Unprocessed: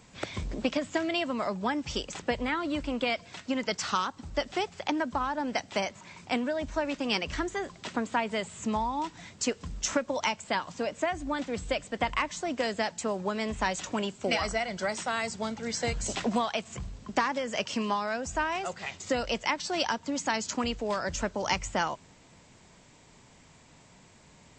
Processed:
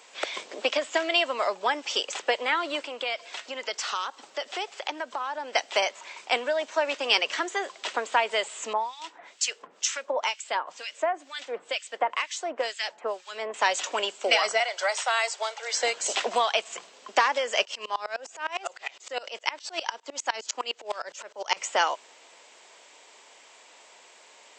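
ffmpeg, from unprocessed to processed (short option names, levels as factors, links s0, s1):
-filter_complex "[0:a]asettb=1/sr,asplit=3[s0][s1][s2];[s0]atrim=end=2.854[s3];[s1]atrim=start=2.85:end=5.53,asetpts=PTS-STARTPTS,afade=t=in:d=0.004:c=qsin,afade=t=out:st=2.676:d=0.004:c=qsin,acompressor=threshold=0.0141:ratio=2:attack=3.2:release=140:knee=1:detection=peak[s4];[s2]atrim=start=5.526[s5];[s3][s4]acrossfade=d=0.004:c1=hsin:c2=qsin[s6];[s6][s5]acrossfade=d=0.004:c1=qsin:c2=hsin,asettb=1/sr,asplit=3[s7][s8][s9];[s7]atrim=end=8.734[s10];[s8]atrim=start=8.73:end=13.54,asetpts=PTS-STARTPTS,afade=t=in:d=0.004:c=qsin,afade=t=out:st=4.806:d=0.004:c=qsin,acrossover=split=1700[s11][s12];[s11]aeval=exprs='val(0)*(1-1/2+1/2*cos(2*PI*2.1*n/s))':c=same[s13];[s12]aeval=exprs='val(0)*(1-1/2-1/2*cos(2*PI*2.1*n/s))':c=same[s14];[s13][s14]amix=inputs=2:normalize=0[s15];[s9]atrim=start=13.536[s16];[s10][s15]acrossfade=d=0.004:c1=hsin:c2=qsin[s17];[s17][s16]acrossfade=d=0.004:c1=qsin:c2=hsin,asettb=1/sr,asplit=3[s18][s19][s20];[s18]atrim=end=14.604[s21];[s19]atrim=start=14.6:end=15.74,asetpts=PTS-STARTPTS,afade=t=in:d=0.004:c=qsin,afade=t=out:st=1.136:d=0.004:c=qsin,highpass=f=530:w=0.5412,highpass=f=530:w=1.3066[s22];[s20]atrim=start=15.736[s23];[s21][s22]acrossfade=d=0.004:c1=hsin:c2=qsin[s24];[s24][s23]acrossfade=d=0.004:c1=qsin:c2=hsin,asplit=3[s25][s26][s27];[s25]afade=t=out:st=17.63:d=0.02[s28];[s26]aeval=exprs='val(0)*pow(10,-25*if(lt(mod(-9.8*n/s,1),2*abs(-9.8)/1000),1-mod(-9.8*n/s,1)/(2*abs(-9.8)/1000),(mod(-9.8*n/s,1)-2*abs(-9.8)/1000)/(1-2*abs(-9.8)/1000))/20)':c=same,afade=t=in:st=17.63:d=0.02,afade=t=out:st=21.56:d=0.02[s29];[s27]afade=t=in:st=21.56:d=0.02[s30];[s28][s29][s30]amix=inputs=3:normalize=0,highpass=f=440:w=0.5412,highpass=f=440:w=1.3066,equalizer=f=3000:t=o:w=0.63:g=4,volume=1.88"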